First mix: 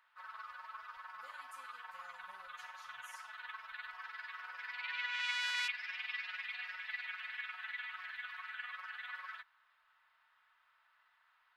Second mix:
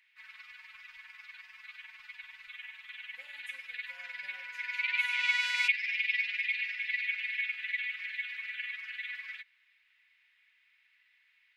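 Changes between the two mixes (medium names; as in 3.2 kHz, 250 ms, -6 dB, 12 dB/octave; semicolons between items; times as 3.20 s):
speech: entry +1.95 s; first sound: add FFT filter 180 Hz 0 dB, 270 Hz +6 dB, 420 Hz -27 dB, 870 Hz -16 dB, 1.3 kHz -16 dB, 2.2 kHz +15 dB, 3.1 kHz +7 dB, 4.5 kHz +5 dB, 6.7 kHz +7 dB, 10 kHz +3 dB; second sound +3.0 dB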